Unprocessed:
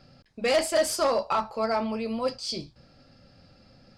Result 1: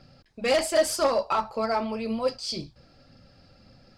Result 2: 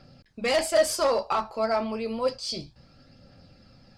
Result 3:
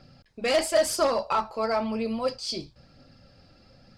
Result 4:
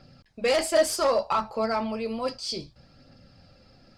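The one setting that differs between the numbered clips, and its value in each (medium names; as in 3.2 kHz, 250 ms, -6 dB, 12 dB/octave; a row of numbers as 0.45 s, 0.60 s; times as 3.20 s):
phaser, rate: 1.9 Hz, 0.3 Hz, 0.99 Hz, 0.64 Hz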